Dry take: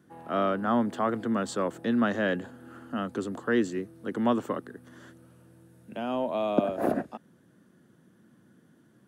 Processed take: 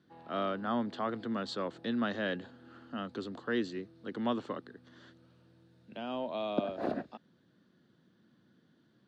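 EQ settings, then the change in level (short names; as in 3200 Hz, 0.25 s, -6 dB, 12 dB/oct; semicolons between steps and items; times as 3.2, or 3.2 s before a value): synth low-pass 4200 Hz, resonance Q 3.6; -7.5 dB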